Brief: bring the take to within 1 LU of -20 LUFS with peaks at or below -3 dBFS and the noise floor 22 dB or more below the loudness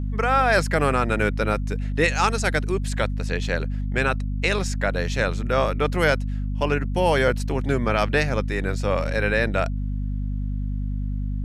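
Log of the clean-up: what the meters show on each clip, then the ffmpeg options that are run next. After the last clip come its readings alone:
hum 50 Hz; highest harmonic 250 Hz; hum level -23 dBFS; loudness -23.5 LUFS; peak level -7.0 dBFS; loudness target -20.0 LUFS
-> -af "bandreject=f=50:t=h:w=6,bandreject=f=100:t=h:w=6,bandreject=f=150:t=h:w=6,bandreject=f=200:t=h:w=6,bandreject=f=250:t=h:w=6"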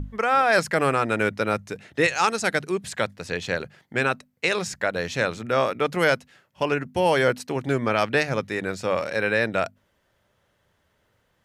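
hum not found; loudness -24.0 LUFS; peak level -8.0 dBFS; loudness target -20.0 LUFS
-> -af "volume=1.58"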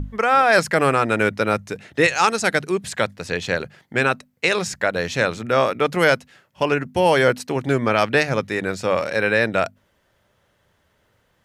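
loudness -20.0 LUFS; peak level -4.0 dBFS; noise floor -65 dBFS

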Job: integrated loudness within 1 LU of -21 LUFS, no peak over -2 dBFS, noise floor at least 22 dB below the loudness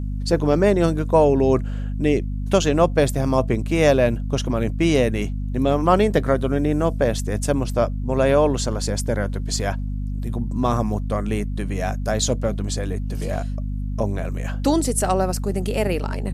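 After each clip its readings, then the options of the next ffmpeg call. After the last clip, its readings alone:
hum 50 Hz; highest harmonic 250 Hz; hum level -23 dBFS; loudness -21.5 LUFS; peak level -3.5 dBFS; loudness target -21.0 LUFS
-> -af "bandreject=f=50:t=h:w=6,bandreject=f=100:t=h:w=6,bandreject=f=150:t=h:w=6,bandreject=f=200:t=h:w=6,bandreject=f=250:t=h:w=6"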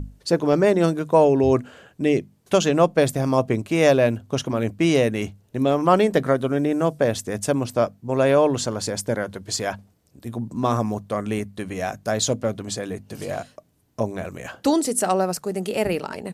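hum not found; loudness -22.0 LUFS; peak level -4.5 dBFS; loudness target -21.0 LUFS
-> -af "volume=1.12"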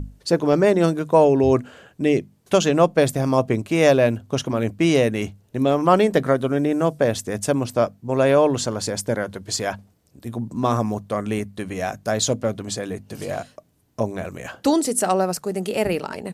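loudness -21.0 LUFS; peak level -3.5 dBFS; noise floor -60 dBFS

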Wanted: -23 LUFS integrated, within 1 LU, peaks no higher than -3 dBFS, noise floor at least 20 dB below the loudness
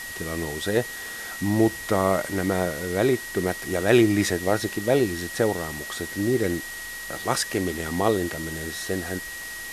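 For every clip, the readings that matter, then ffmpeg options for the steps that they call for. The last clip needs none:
steady tone 1.9 kHz; tone level -35 dBFS; noise floor -36 dBFS; noise floor target -45 dBFS; loudness -25.0 LUFS; peak level -5.0 dBFS; loudness target -23.0 LUFS
-> -af "bandreject=f=1900:w=30"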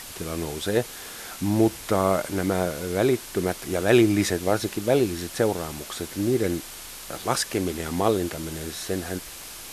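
steady tone not found; noise floor -40 dBFS; noise floor target -45 dBFS
-> -af "afftdn=nr=6:nf=-40"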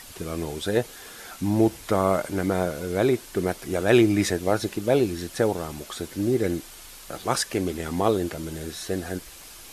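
noise floor -44 dBFS; noise floor target -46 dBFS
-> -af "afftdn=nr=6:nf=-44"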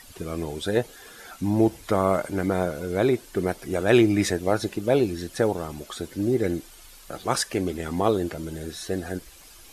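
noise floor -48 dBFS; loudness -25.5 LUFS; peak level -6.0 dBFS; loudness target -23.0 LUFS
-> -af "volume=1.33"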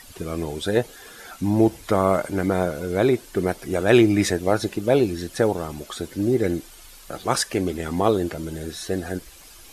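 loudness -23.0 LUFS; peak level -3.5 dBFS; noise floor -46 dBFS

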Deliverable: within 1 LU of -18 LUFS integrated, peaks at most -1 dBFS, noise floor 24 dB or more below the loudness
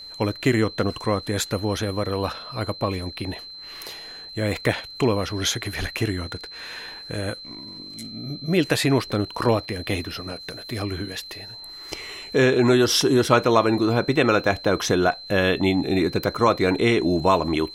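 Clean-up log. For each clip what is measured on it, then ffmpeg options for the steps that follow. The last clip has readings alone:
steady tone 4.1 kHz; tone level -37 dBFS; loudness -22.5 LUFS; peak level -4.0 dBFS; loudness target -18.0 LUFS
-> -af "bandreject=f=4100:w=30"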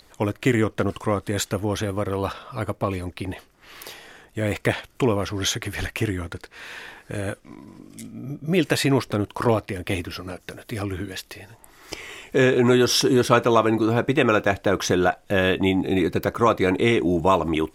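steady tone not found; loudness -22.5 LUFS; peak level -4.0 dBFS; loudness target -18.0 LUFS
-> -af "volume=1.68,alimiter=limit=0.891:level=0:latency=1"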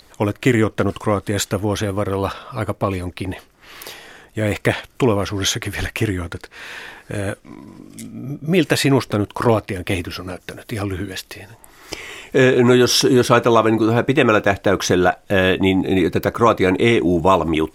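loudness -18.0 LUFS; peak level -1.0 dBFS; noise floor -51 dBFS

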